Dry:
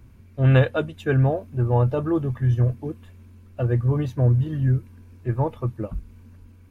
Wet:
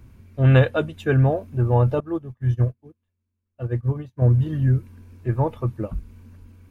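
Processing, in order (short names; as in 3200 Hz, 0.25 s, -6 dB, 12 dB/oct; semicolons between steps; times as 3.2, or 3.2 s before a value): 2–4.22 upward expander 2.5:1, over -38 dBFS; gain +1.5 dB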